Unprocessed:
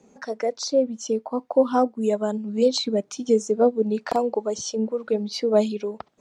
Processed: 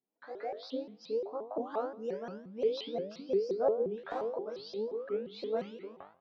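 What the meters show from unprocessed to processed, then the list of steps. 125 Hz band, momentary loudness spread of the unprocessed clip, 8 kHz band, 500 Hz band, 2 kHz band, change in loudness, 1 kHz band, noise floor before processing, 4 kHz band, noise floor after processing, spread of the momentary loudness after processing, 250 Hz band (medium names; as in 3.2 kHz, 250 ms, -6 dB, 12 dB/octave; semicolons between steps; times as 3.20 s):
no reading, 7 LU, under -30 dB, -11.5 dB, -11.5 dB, -12.5 dB, -13.0 dB, -60 dBFS, -15.5 dB, -64 dBFS, 11 LU, -17.5 dB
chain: knee-point frequency compression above 2.6 kHz 1.5:1; tone controls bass -3 dB, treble -11 dB; hum notches 50/100/150/200/250 Hz; gate with hold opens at -37 dBFS; level rider gain up to 3 dB; chord resonator G2 fifth, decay 0.42 s; vibrato with a chosen wave saw up 5.7 Hz, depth 250 cents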